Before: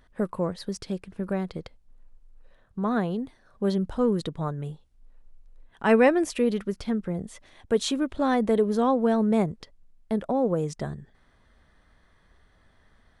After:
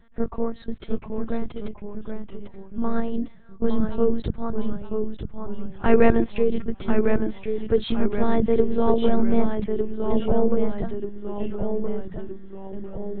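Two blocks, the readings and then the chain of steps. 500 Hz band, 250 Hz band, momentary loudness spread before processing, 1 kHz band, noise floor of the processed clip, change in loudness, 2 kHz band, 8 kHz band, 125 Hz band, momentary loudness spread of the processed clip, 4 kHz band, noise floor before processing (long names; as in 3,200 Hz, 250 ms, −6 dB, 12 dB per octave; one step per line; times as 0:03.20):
+3.0 dB, +2.0 dB, 14 LU, −1.0 dB, −42 dBFS, +1.0 dB, −2.0 dB, below −35 dB, +1.0 dB, 15 LU, −3.0 dB, −62 dBFS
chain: one-pitch LPC vocoder at 8 kHz 230 Hz
delay with pitch and tempo change per echo 695 ms, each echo −1 semitone, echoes 3, each echo −6 dB
low-shelf EQ 430 Hz +7.5 dB
level −1 dB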